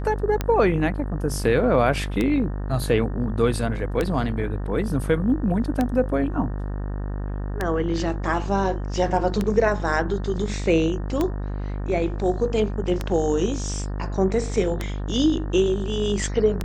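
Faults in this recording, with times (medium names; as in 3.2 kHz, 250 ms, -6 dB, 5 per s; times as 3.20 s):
buzz 50 Hz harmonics 37 -28 dBFS
tick 33 1/3 rpm -10 dBFS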